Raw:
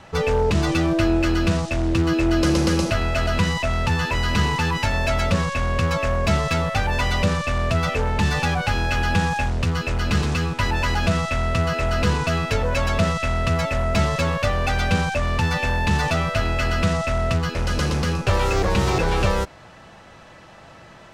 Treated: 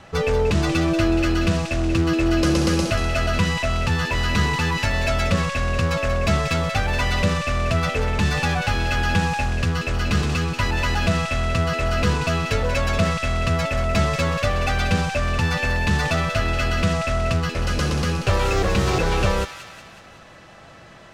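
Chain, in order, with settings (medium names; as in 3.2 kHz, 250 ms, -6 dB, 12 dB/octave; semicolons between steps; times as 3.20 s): band-stop 910 Hz, Q 11; feedback echo behind a high-pass 185 ms, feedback 54%, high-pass 1.5 kHz, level -8 dB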